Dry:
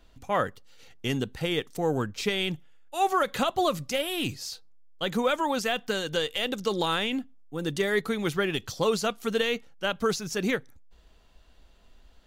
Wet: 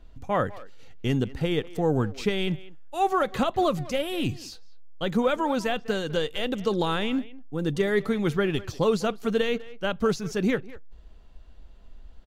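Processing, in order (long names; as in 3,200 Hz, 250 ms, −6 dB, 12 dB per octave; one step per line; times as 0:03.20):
spectral tilt −2 dB per octave
far-end echo of a speakerphone 200 ms, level −17 dB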